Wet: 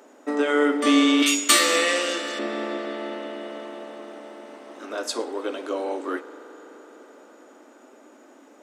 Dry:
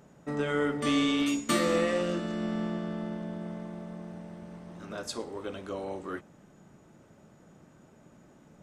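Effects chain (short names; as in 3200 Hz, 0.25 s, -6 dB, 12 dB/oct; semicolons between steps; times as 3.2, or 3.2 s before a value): 1.22–2.39 tilt shelf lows -9.5 dB, about 1200 Hz; elliptic high-pass 260 Hz, stop band 40 dB; on a send: reverb RT60 5.8 s, pre-delay 42 ms, DRR 11.5 dB; on the sum: gain +9 dB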